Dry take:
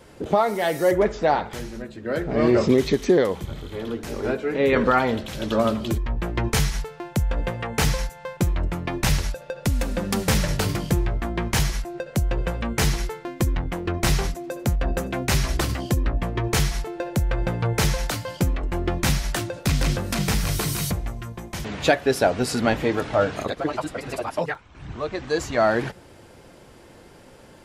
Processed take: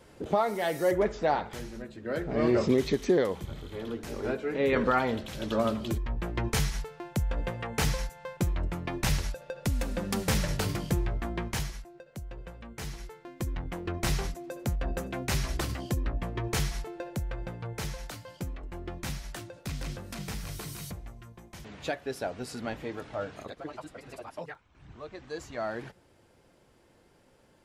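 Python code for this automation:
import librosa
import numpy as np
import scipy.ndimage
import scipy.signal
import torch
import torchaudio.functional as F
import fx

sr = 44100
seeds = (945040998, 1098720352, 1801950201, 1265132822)

y = fx.gain(x, sr, db=fx.line((11.34, -6.5), (11.99, -18.5), (12.77, -18.5), (13.75, -8.0), (16.88, -8.0), (17.59, -14.5)))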